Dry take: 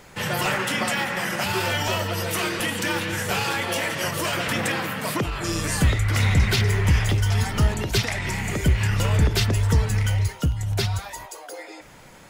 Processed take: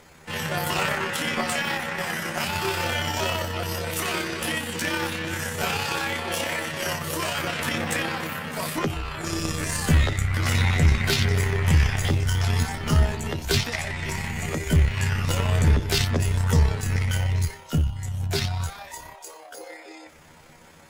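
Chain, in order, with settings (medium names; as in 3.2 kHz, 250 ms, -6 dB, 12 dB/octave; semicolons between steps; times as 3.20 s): Chebyshev shaper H 4 -20 dB, 7 -31 dB, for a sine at -8.5 dBFS; granular stretch 1.7×, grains 61 ms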